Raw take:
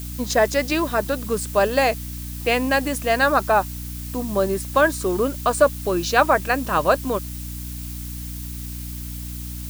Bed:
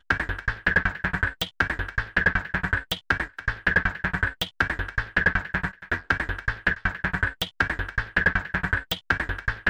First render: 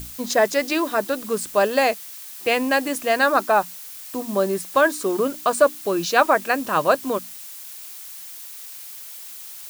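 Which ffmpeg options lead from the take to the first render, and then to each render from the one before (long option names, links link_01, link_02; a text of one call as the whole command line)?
ffmpeg -i in.wav -af "bandreject=frequency=60:width_type=h:width=6,bandreject=frequency=120:width_type=h:width=6,bandreject=frequency=180:width_type=h:width=6,bandreject=frequency=240:width_type=h:width=6,bandreject=frequency=300:width_type=h:width=6" out.wav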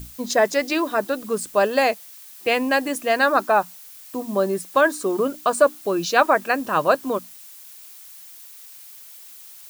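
ffmpeg -i in.wav -af "afftdn=noise_reduction=6:noise_floor=-38" out.wav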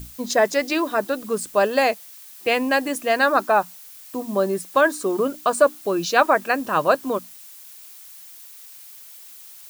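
ffmpeg -i in.wav -af anull out.wav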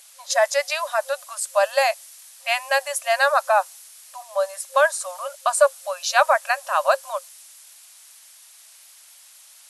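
ffmpeg -i in.wav -af "afftfilt=real='re*between(b*sr/4096,530,12000)':imag='im*between(b*sr/4096,530,12000)':win_size=4096:overlap=0.75,adynamicequalizer=threshold=0.0112:dfrequency=5000:dqfactor=0.7:tfrequency=5000:tqfactor=0.7:attack=5:release=100:ratio=0.375:range=3:mode=boostabove:tftype=highshelf" out.wav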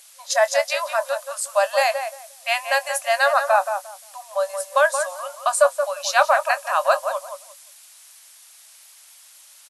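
ffmpeg -i in.wav -filter_complex "[0:a]asplit=2[link_01][link_02];[link_02]adelay=23,volume=-14dB[link_03];[link_01][link_03]amix=inputs=2:normalize=0,asplit=2[link_04][link_05];[link_05]adelay=176,lowpass=frequency=1900:poles=1,volume=-7dB,asplit=2[link_06][link_07];[link_07]adelay=176,lowpass=frequency=1900:poles=1,volume=0.2,asplit=2[link_08][link_09];[link_09]adelay=176,lowpass=frequency=1900:poles=1,volume=0.2[link_10];[link_04][link_06][link_08][link_10]amix=inputs=4:normalize=0" out.wav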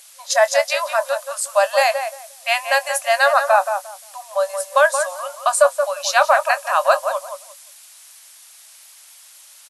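ffmpeg -i in.wav -af "volume=3dB,alimiter=limit=-2dB:level=0:latency=1" out.wav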